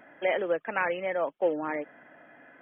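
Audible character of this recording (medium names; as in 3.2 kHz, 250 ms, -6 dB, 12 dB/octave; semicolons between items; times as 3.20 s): noise floor -57 dBFS; spectral tilt -2.5 dB/octave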